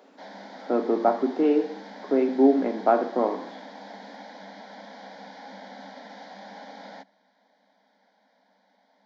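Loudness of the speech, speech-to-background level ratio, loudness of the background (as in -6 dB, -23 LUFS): -23.5 LUFS, 20.0 dB, -43.5 LUFS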